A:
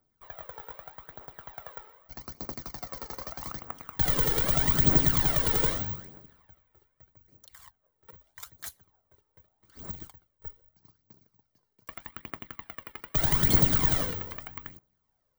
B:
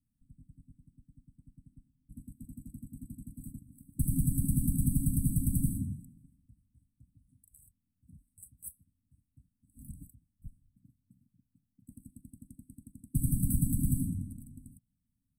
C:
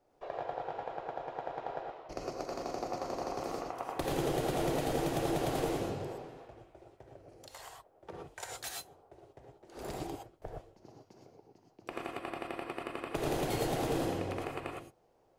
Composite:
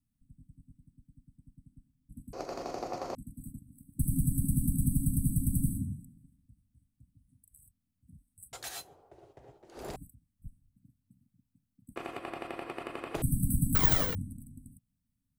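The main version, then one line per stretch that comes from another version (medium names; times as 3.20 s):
B
2.33–3.15 s: from C
8.53–9.96 s: from C
11.96–13.22 s: from C
13.75–14.15 s: from A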